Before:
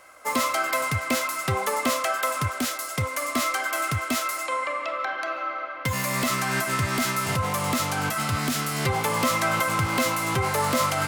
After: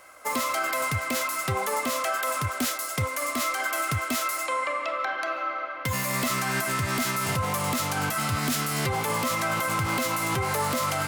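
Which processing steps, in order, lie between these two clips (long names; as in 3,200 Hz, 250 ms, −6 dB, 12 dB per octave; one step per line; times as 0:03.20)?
high-shelf EQ 12,000 Hz +5 dB
brickwall limiter −17.5 dBFS, peak gain reduction 6 dB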